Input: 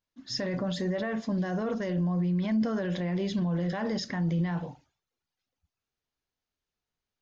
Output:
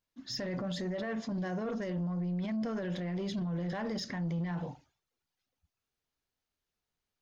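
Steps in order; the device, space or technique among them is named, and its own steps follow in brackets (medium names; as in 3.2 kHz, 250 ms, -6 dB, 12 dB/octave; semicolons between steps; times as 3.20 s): soft clipper into limiter (saturation -24.5 dBFS, distortion -18 dB; peak limiter -30 dBFS, peak gain reduction 5 dB)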